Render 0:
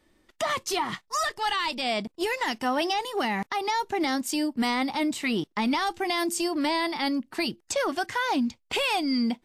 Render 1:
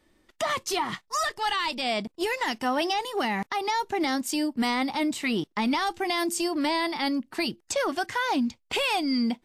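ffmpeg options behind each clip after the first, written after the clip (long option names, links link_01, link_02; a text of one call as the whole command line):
ffmpeg -i in.wav -af anull out.wav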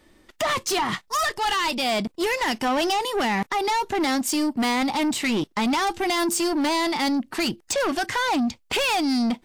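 ffmpeg -i in.wav -af "asoftclip=type=tanh:threshold=-28dB,volume=8.5dB" out.wav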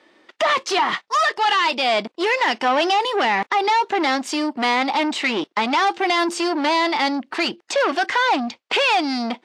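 ffmpeg -i in.wav -af "highpass=400,lowpass=4100,volume=6dB" out.wav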